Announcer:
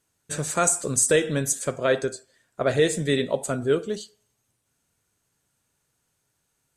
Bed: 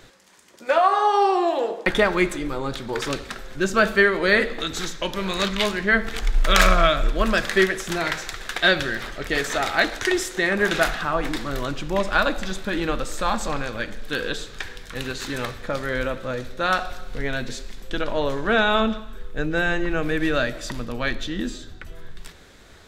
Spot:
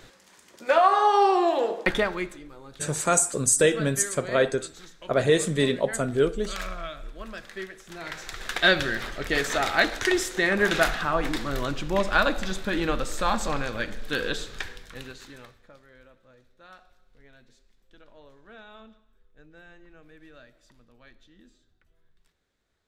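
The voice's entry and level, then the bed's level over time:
2.50 s, 0.0 dB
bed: 1.83 s -1 dB
2.52 s -18.5 dB
7.84 s -18.5 dB
8.44 s -1.5 dB
14.6 s -1.5 dB
15.88 s -28.5 dB

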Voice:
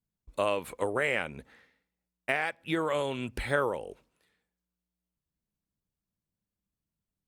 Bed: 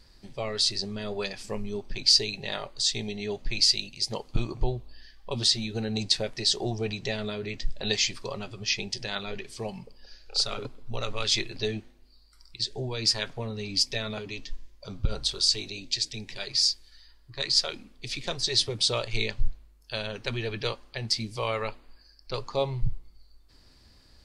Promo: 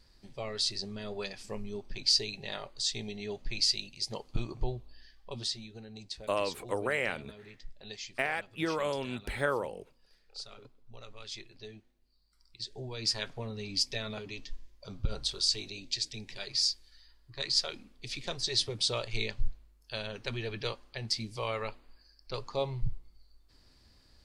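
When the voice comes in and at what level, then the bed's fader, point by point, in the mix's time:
5.90 s, -2.5 dB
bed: 5.13 s -6 dB
5.87 s -17.5 dB
11.81 s -17.5 dB
13.22 s -5 dB

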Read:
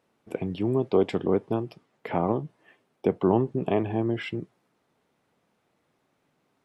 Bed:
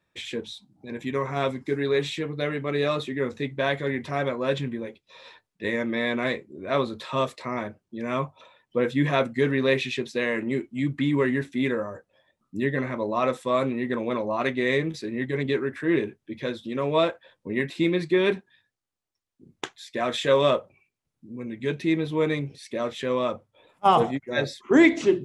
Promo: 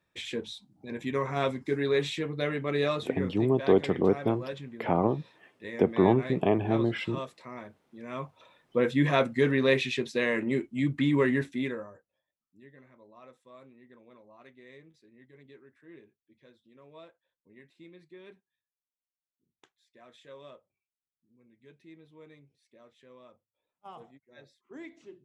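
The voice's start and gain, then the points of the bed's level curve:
2.75 s, 0.0 dB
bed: 2.84 s -2.5 dB
3.47 s -12.5 dB
7.99 s -12.5 dB
8.74 s -1.5 dB
11.43 s -1.5 dB
12.53 s -28.5 dB

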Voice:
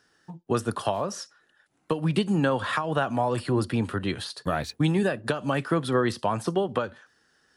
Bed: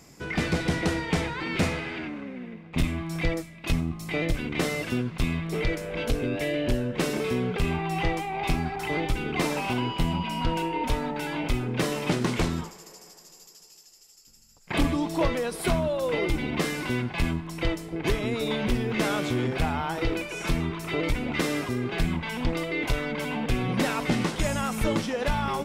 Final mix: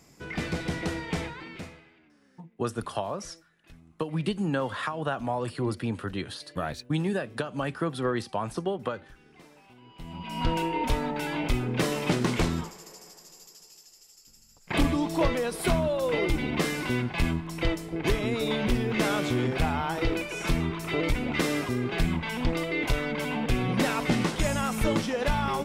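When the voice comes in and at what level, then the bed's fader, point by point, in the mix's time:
2.10 s, -4.5 dB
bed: 1.25 s -5 dB
2 s -27 dB
9.79 s -27 dB
10.44 s 0 dB

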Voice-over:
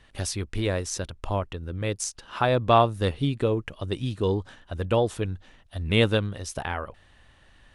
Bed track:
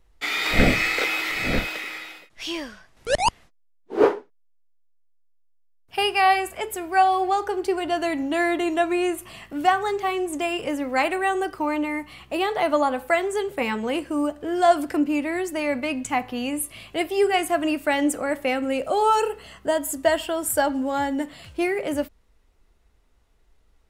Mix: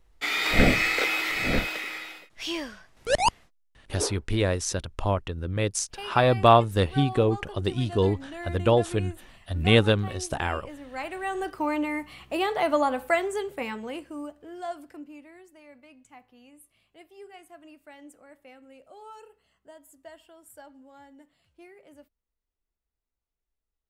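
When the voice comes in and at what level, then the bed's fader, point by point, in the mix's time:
3.75 s, +2.0 dB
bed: 3.33 s -1.5 dB
4.07 s -16 dB
10.82 s -16 dB
11.61 s -2.5 dB
13.14 s -2.5 dB
15.6 s -26.5 dB

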